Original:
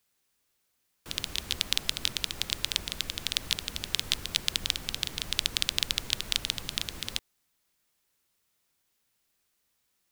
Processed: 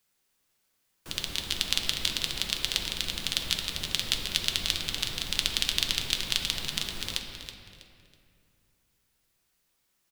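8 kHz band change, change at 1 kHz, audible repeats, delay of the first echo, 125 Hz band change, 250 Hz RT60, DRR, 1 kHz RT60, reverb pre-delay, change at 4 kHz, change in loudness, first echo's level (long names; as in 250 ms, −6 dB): +1.0 dB, +2.0 dB, 3, 324 ms, +2.0 dB, 3.1 s, 2.0 dB, 2.2 s, 5 ms, +1.5 dB, +1.5 dB, −10.5 dB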